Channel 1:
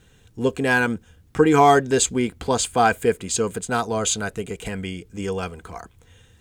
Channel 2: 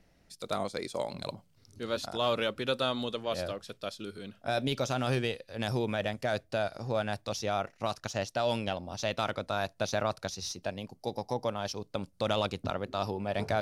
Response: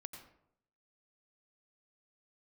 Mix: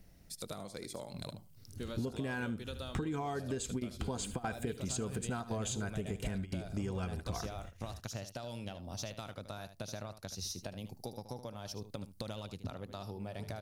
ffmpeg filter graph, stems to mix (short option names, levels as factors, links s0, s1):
-filter_complex "[0:a]bandreject=f=470:w=12,acompressor=threshold=0.02:ratio=2,adelay=1600,volume=0.631,asplit=3[s0][s1][s2];[s1]volume=0.141[s3];[s2]volume=0.126[s4];[1:a]acompressor=threshold=0.0112:ratio=20,aemphasis=mode=production:type=50fm,volume=0.668,asplit=3[s5][s6][s7];[s6]volume=0.251[s8];[s7]apad=whole_len=353076[s9];[s0][s9]sidechaingate=range=0.0224:threshold=0.002:ratio=16:detection=peak[s10];[2:a]atrim=start_sample=2205[s11];[s3][s11]afir=irnorm=-1:irlink=0[s12];[s4][s8]amix=inputs=2:normalize=0,aecho=0:1:76:1[s13];[s10][s5][s12][s13]amix=inputs=4:normalize=0,lowshelf=f=250:g=11.5,acompressor=threshold=0.0224:ratio=12"